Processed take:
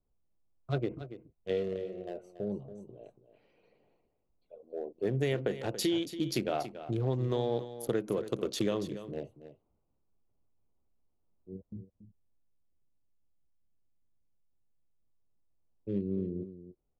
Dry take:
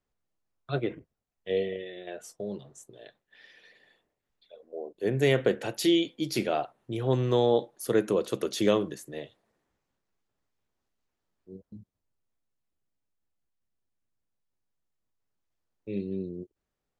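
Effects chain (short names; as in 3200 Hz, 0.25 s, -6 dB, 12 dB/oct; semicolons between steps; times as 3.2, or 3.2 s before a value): Wiener smoothing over 25 samples; low shelf 110 Hz +8 dB; compressor, threshold -27 dBFS, peak gain reduction 10 dB; on a send: echo 0.282 s -12.5 dB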